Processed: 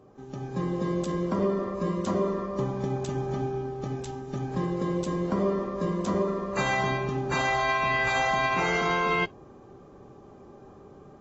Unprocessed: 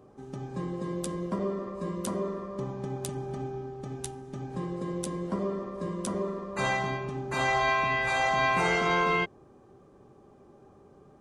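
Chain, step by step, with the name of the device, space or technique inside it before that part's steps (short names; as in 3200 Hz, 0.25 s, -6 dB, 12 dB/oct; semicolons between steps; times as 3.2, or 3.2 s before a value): low-bitrate web radio (AGC gain up to 5.5 dB; limiter -17 dBFS, peak gain reduction 8.5 dB; AAC 24 kbps 22050 Hz)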